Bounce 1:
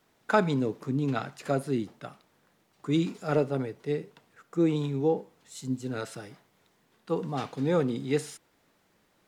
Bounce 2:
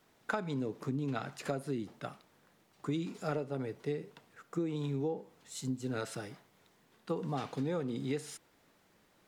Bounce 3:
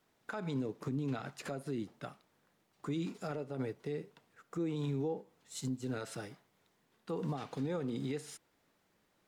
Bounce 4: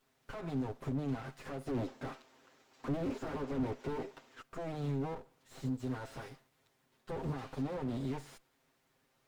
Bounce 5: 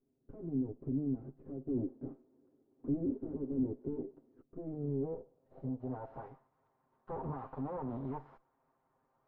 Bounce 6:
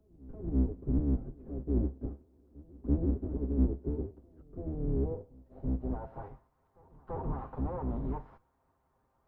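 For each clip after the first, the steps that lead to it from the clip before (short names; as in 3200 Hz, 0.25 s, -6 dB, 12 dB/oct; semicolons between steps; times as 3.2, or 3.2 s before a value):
compressor 12:1, threshold -31 dBFS, peak gain reduction 15 dB
limiter -31 dBFS, peak gain reduction 10.5 dB; upward expander 1.5:1, over -55 dBFS; gain +3 dB
minimum comb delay 7.6 ms; spectral gain 1.68–4.42, 220–7900 Hz +10 dB; slew limiter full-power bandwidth 6.7 Hz; gain +1.5 dB
low-pass sweep 330 Hz -> 1000 Hz, 4.56–6.44; gain -3.5 dB
octaver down 2 oct, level +4 dB; reverse echo 0.336 s -23.5 dB; reverb, pre-delay 6 ms, DRR 18 dB; gain +1.5 dB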